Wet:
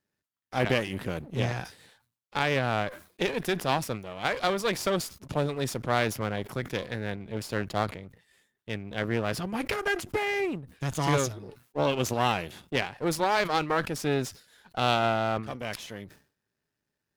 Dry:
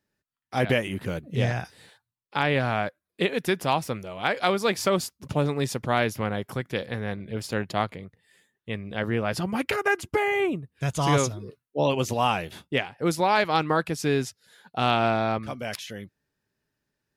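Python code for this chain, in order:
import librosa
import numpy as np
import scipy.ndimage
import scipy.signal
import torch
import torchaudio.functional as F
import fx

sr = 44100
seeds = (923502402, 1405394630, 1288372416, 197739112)

y = np.where(x < 0.0, 10.0 ** (-12.0 / 20.0) * x, x)
y = fx.highpass(y, sr, hz=47.0, slope=6)
y = fx.sustainer(y, sr, db_per_s=140.0)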